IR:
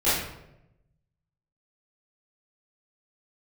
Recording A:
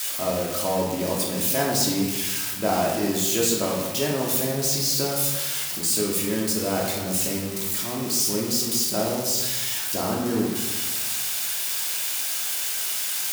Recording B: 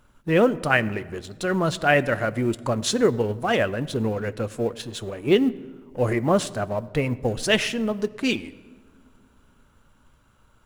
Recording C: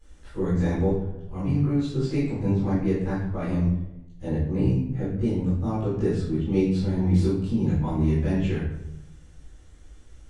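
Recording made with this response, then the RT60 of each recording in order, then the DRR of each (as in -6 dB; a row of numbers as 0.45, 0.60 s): C; 1.3 s, not exponential, 0.90 s; -3.0, 14.5, -14.5 dB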